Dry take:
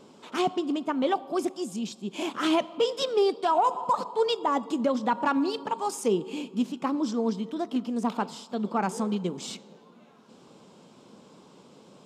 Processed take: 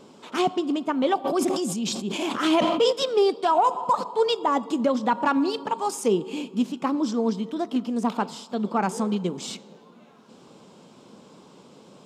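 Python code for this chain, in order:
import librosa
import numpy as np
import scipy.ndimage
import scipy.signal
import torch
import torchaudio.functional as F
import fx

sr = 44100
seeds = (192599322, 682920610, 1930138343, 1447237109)

y = fx.sustainer(x, sr, db_per_s=33.0, at=(1.24, 2.91), fade=0.02)
y = F.gain(torch.from_numpy(y), 3.0).numpy()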